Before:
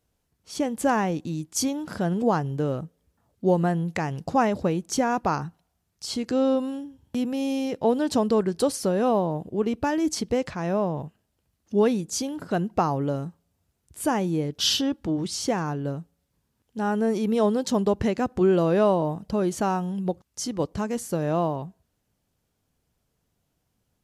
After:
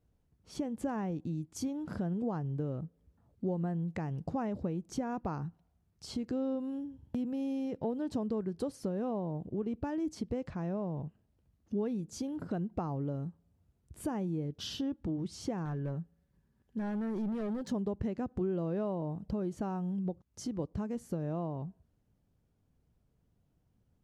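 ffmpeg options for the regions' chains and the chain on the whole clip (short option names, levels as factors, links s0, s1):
-filter_complex "[0:a]asettb=1/sr,asplit=3[s0][s1][s2];[s0]atrim=end=15.654[s3];[s1]atrim=start=15.65:end=17.71,asetpts=PTS-STARTPTS,afade=t=in:d=0.004:c=qsin,afade=t=out:st=2.056:d=0.004:c=qsin,equalizer=f=1700:t=o:w=0.25:g=10.5,aecho=1:1:5.2:0.32,atrim=end_sample=90846,volume=17.8,asoftclip=hard,volume=0.0562[s4];[s2]atrim=start=17.706[s5];[s3][s4]acrossfade=d=0.004:c1=hsin:c2=qsin[s6];[s6][s5]acrossfade=d=0.004:c1=qsin:c2=hsin,lowshelf=f=380:g=10.5,acompressor=threshold=0.0316:ratio=2.5,highshelf=f=3100:g=-8.5,volume=0.473"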